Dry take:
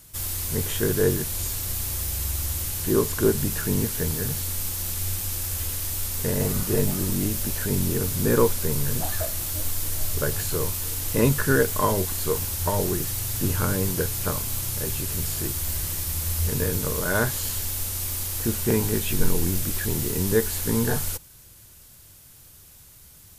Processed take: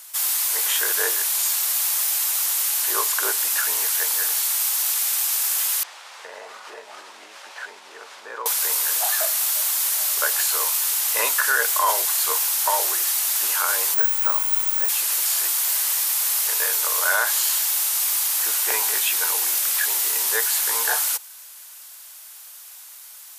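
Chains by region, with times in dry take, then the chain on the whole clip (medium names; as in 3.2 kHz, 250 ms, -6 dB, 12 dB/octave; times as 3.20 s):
5.83–8.46 s: tape spacing loss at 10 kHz 31 dB + compression 3:1, threshold -26 dBFS
13.94–14.89 s: peaking EQ 5.2 kHz -10.5 dB 1.7 oct + careless resampling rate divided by 2×, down filtered, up zero stuff
whole clip: high-pass 760 Hz 24 dB/octave; loudness maximiser +16.5 dB; trim -8 dB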